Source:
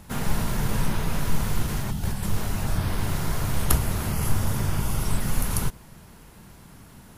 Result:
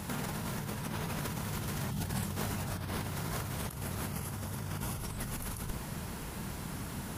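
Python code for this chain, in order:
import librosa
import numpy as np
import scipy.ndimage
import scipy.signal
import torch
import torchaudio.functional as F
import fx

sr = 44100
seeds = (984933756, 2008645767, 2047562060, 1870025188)

y = fx.highpass(x, sr, hz=fx.steps((0.0, 87.0), (4.96, 42.0)), slope=12)
y = fx.over_compress(y, sr, threshold_db=-37.0, ratio=-1.0)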